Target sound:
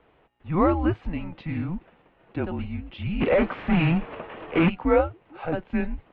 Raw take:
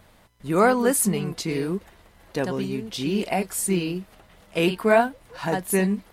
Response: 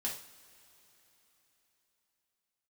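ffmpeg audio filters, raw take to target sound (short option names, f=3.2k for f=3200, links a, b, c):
-filter_complex "[0:a]equalizer=f=1.9k:t=o:w=0.6:g=-5.5,asplit=3[a][b][c];[a]afade=t=out:st=3.2:d=0.02[d];[b]asplit=2[e][f];[f]highpass=f=720:p=1,volume=29dB,asoftclip=type=tanh:threshold=-9.5dB[g];[e][g]amix=inputs=2:normalize=0,lowpass=f=1.8k:p=1,volume=-6dB,afade=t=in:st=3.2:d=0.02,afade=t=out:st=4.68:d=0.02[h];[c]afade=t=in:st=4.68:d=0.02[i];[d][h][i]amix=inputs=3:normalize=0,highpass=f=220:t=q:w=0.5412,highpass=f=220:t=q:w=1.307,lowpass=f=3k:t=q:w=0.5176,lowpass=f=3k:t=q:w=0.7071,lowpass=f=3k:t=q:w=1.932,afreqshift=-170,volume=-1.5dB"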